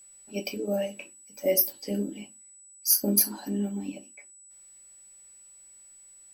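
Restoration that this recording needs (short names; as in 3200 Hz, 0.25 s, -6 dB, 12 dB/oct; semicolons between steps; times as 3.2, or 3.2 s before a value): clip repair -10 dBFS; notch 7900 Hz, Q 30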